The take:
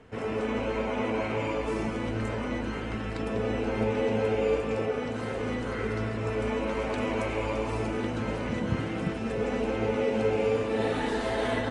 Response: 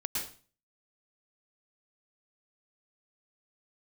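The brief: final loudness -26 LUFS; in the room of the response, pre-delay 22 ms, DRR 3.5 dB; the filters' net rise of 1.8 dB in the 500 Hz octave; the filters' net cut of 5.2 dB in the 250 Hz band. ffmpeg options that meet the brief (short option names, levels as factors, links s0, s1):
-filter_complex "[0:a]equalizer=f=250:t=o:g=-7.5,equalizer=f=500:t=o:g=4,asplit=2[s0][s1];[1:a]atrim=start_sample=2205,adelay=22[s2];[s1][s2]afir=irnorm=-1:irlink=0,volume=0.422[s3];[s0][s3]amix=inputs=2:normalize=0,volume=1.26"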